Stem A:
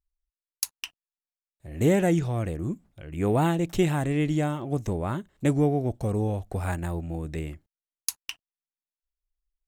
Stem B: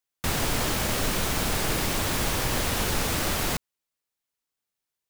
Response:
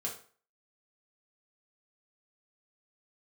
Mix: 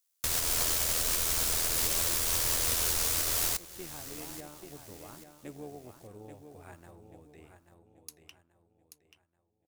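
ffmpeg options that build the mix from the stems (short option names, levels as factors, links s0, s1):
-filter_complex "[0:a]highpass=240,volume=0.141,asplit=3[s0][s1][s2];[s1]volume=0.075[s3];[s2]volume=0.422[s4];[1:a]bass=f=250:g=-11,treble=f=4000:g=12,bandreject=f=800:w=12,volume=0.944,asplit=3[s5][s6][s7];[s6]volume=0.168[s8];[s7]volume=0.0841[s9];[2:a]atrim=start_sample=2205[s10];[s3][s8]amix=inputs=2:normalize=0[s11];[s11][s10]afir=irnorm=-1:irlink=0[s12];[s4][s9]amix=inputs=2:normalize=0,aecho=0:1:834|1668|2502|3336|4170:1|0.36|0.13|0.0467|0.0168[s13];[s0][s5][s12][s13]amix=inputs=4:normalize=0,lowshelf=f=120:t=q:w=1.5:g=9,tremolo=f=82:d=0.462,alimiter=limit=0.133:level=0:latency=1:release=362"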